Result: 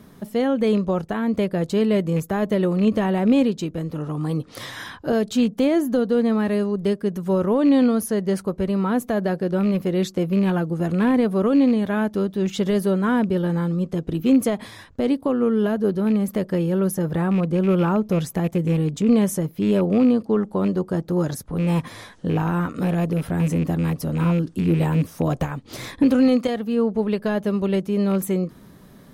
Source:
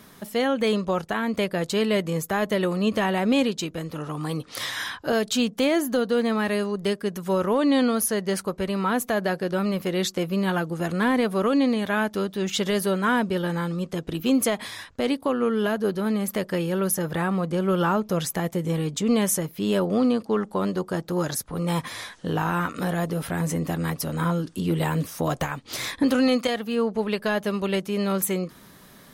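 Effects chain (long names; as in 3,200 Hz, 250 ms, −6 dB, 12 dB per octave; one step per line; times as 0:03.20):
loose part that buzzes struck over −26 dBFS, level −23 dBFS
tilt shelving filter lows +6.5 dB, about 700 Hz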